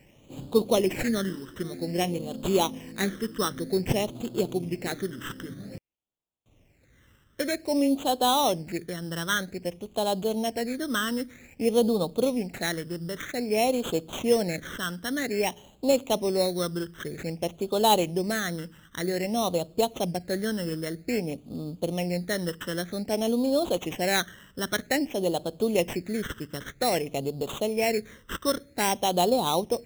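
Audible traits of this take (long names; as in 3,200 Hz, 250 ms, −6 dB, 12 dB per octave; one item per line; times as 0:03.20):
aliases and images of a low sample rate 4,800 Hz, jitter 0%
phaser sweep stages 12, 0.52 Hz, lowest notch 740–1,900 Hz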